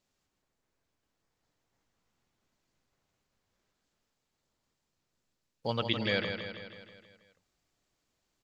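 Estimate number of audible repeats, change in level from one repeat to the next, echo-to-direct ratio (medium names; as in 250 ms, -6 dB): 6, -5.0 dB, -5.5 dB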